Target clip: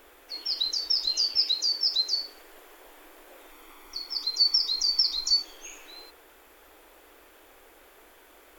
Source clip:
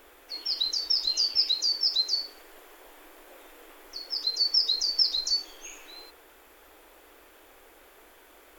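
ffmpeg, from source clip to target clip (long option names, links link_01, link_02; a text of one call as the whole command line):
ffmpeg -i in.wav -filter_complex "[0:a]asettb=1/sr,asplit=3[link_01][link_02][link_03];[link_01]atrim=end=1.434[link_04];[link_02]atrim=start=1.43:end=1.9,asetpts=PTS-STARTPTS,afade=type=in:duration=0.004:curve=qsin,afade=type=out:start_time=0.466:duration=0.004:curve=qsin,highpass=frequency=80:width=0.5412,highpass=frequency=80:width=1.3066[link_05];[link_03]atrim=start=1.896[link_06];[link_04][link_05]acrossfade=duration=0.004:curve1=hsin:curve2=qsin[link_07];[link_07][link_06]acrossfade=duration=0.004:curve1=qsin:curve2=hsin,asettb=1/sr,asplit=3[link_08][link_09][link_10];[link_08]atrim=end=3.514[link_11];[link_09]atrim=start=3.51:end=5.43,asetpts=PTS-STARTPTS,afade=type=in:duration=0.004:curve=qsin,afade=type=out:start_time=1.916:duration=0.004:curve=qsin,aecho=1:1:0.9:0.53,atrim=end_sample=84672[link_12];[link_10]atrim=start=5.426[link_13];[link_11][link_12]acrossfade=duration=0.004:curve1=hsin:curve2=qsin[link_14];[link_14][link_13]acrossfade=duration=0.004:curve1=qsin:curve2=hsin" out.wav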